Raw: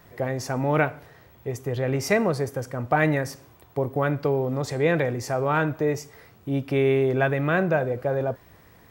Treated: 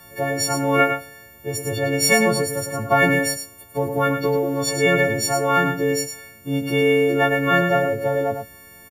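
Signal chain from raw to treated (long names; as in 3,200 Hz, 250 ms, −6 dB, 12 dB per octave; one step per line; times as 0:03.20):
every partial snapped to a pitch grid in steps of 4 semitones
single-tap delay 105 ms −7 dB
level +2.5 dB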